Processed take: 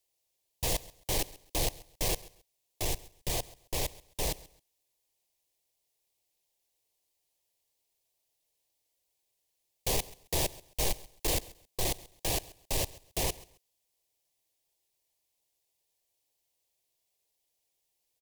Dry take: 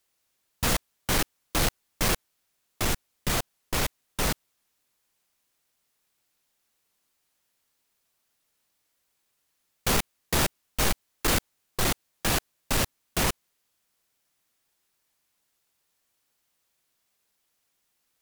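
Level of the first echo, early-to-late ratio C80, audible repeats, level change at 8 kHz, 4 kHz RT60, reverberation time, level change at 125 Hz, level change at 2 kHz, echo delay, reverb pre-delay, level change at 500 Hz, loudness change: -20.5 dB, none, 2, -4.5 dB, none, none, -6.5 dB, -11.0 dB, 0.134 s, none, -4.0 dB, -5.5 dB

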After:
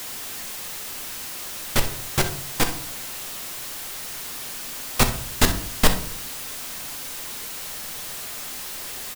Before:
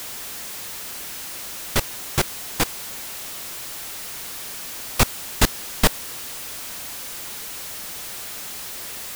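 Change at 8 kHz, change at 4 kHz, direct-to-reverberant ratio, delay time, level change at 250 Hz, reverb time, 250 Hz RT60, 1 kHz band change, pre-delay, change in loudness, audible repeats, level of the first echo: 0.0 dB, 0.0 dB, 5.0 dB, 63 ms, +1.0 dB, 0.55 s, 0.70 s, 0.0 dB, 4 ms, 0.0 dB, 1, -14.0 dB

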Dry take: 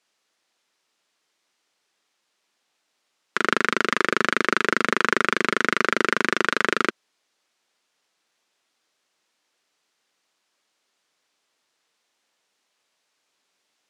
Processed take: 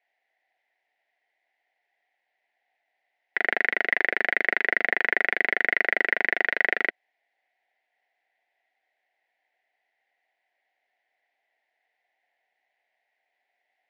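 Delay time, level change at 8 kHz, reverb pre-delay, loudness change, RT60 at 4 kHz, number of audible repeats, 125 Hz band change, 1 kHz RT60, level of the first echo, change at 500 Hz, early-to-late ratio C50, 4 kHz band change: none, under -25 dB, none, -1.5 dB, none, none, under -15 dB, none, none, -7.0 dB, none, -11.0 dB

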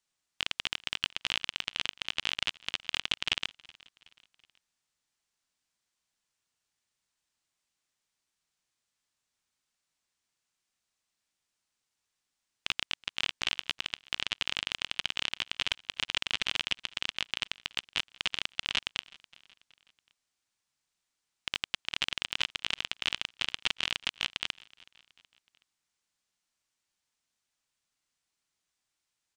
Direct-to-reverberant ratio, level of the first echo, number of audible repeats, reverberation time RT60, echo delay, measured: none, -23.5 dB, 2, none, 0.373 s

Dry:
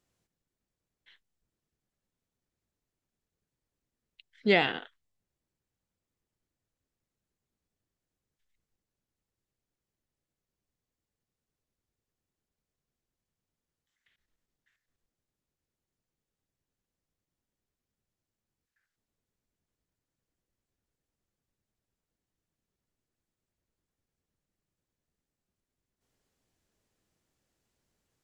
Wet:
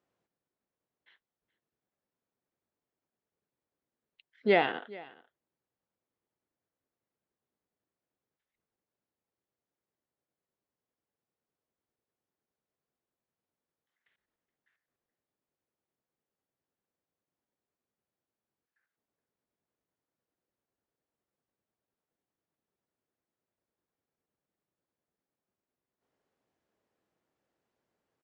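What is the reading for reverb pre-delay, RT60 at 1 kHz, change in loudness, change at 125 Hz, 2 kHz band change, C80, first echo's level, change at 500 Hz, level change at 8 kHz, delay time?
none, none, -2.0 dB, -5.0 dB, -3.0 dB, none, -21.0 dB, +1.0 dB, n/a, 0.421 s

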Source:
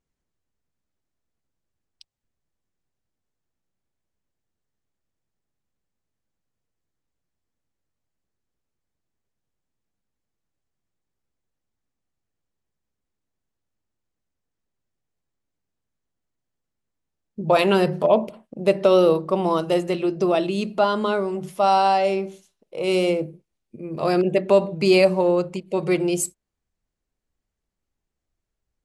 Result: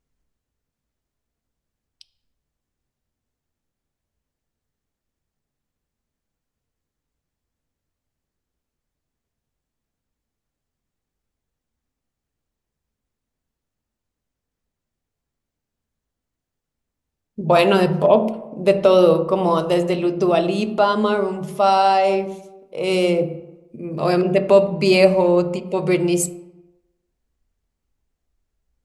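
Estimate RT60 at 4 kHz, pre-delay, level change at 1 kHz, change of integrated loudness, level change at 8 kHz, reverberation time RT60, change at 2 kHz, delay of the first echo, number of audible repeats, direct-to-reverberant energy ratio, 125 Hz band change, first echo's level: 0.60 s, 3 ms, +3.0 dB, +3.0 dB, n/a, 1.0 s, +2.5 dB, none, none, 9.5 dB, +4.5 dB, none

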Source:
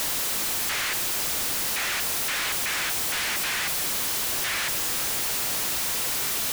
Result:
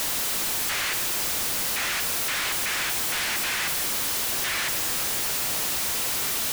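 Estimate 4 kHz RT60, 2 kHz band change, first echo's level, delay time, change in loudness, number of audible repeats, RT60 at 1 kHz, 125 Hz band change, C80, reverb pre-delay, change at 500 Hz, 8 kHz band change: 1.3 s, +0.5 dB, none, none, +0.5 dB, none, 1.9 s, +0.5 dB, 11.5 dB, 24 ms, +0.5 dB, 0.0 dB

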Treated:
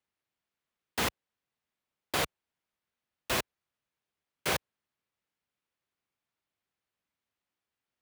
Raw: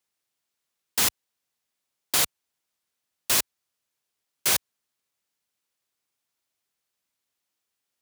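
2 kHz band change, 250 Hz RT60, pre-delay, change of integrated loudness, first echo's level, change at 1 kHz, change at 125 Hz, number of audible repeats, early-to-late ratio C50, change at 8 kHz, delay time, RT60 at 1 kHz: -3.0 dB, none, none, -9.0 dB, none, -0.5 dB, +2.0 dB, none, none, -14.0 dB, none, none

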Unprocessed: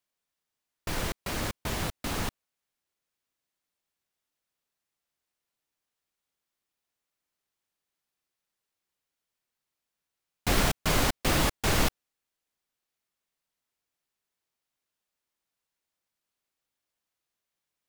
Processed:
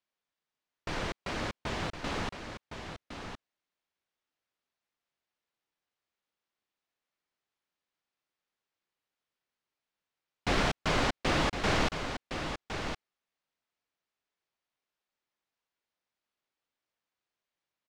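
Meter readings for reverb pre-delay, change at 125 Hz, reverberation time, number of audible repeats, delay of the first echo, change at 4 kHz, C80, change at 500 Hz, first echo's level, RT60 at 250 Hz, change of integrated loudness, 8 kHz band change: none, -4.0 dB, none, 1, 1.062 s, -2.5 dB, none, -0.5 dB, -8.0 dB, none, -3.5 dB, -10.0 dB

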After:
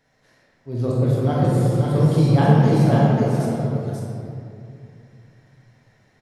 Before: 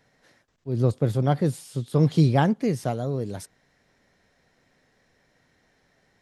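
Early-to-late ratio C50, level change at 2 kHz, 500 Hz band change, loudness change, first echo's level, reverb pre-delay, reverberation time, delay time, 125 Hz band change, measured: -5.0 dB, +4.5 dB, +5.5 dB, +5.5 dB, -4.0 dB, 25 ms, 2.6 s, 0.537 s, +7.0 dB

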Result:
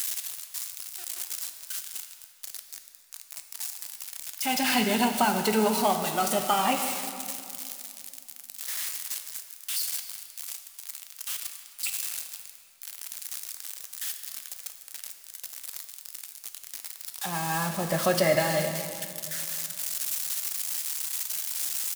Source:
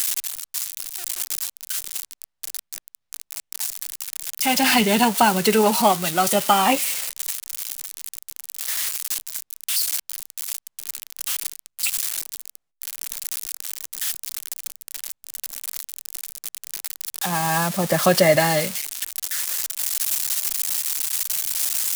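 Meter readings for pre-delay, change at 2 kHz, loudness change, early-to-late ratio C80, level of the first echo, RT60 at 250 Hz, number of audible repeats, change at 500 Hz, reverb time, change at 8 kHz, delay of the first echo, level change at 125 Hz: 3 ms, -7.0 dB, -7.0 dB, 8.0 dB, -20.5 dB, 2.8 s, 1, -6.5 dB, 2.5 s, -7.5 dB, 0.263 s, -6.5 dB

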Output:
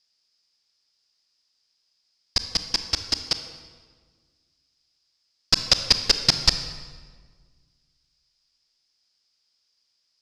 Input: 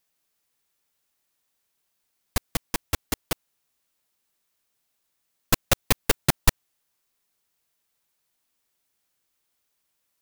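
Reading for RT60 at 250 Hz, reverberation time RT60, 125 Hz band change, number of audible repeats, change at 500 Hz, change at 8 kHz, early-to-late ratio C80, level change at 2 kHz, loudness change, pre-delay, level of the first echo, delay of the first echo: 2.0 s, 1.6 s, -5.0 dB, none, -5.0 dB, 0.0 dB, 10.5 dB, -1.0 dB, +4.5 dB, 27 ms, none, none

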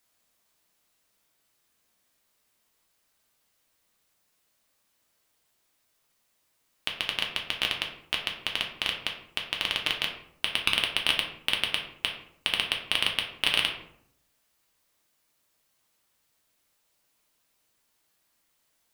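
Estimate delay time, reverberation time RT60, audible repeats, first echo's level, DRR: none, 0.70 s, none, none, 0.5 dB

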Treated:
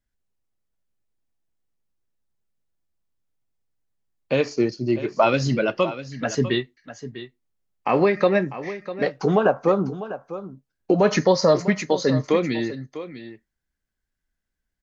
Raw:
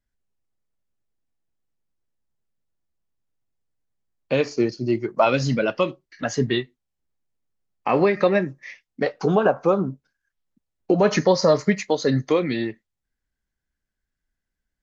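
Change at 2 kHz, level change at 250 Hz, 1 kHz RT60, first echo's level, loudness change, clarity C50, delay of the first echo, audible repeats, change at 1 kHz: 0.0 dB, 0.0 dB, none, -13.5 dB, 0.0 dB, none, 0.649 s, 1, 0.0 dB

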